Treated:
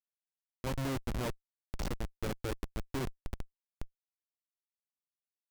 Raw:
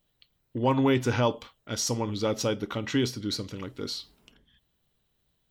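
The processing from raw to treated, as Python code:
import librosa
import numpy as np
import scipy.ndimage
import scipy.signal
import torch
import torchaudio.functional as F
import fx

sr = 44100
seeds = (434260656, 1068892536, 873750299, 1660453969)

y = fx.peak_eq(x, sr, hz=380.0, db=fx.steps((0.0, -5.5), (1.14, 3.0)), octaves=0.6)
y = fx.schmitt(y, sr, flips_db=-21.5)
y = y * 10.0 ** (-3.5 / 20.0)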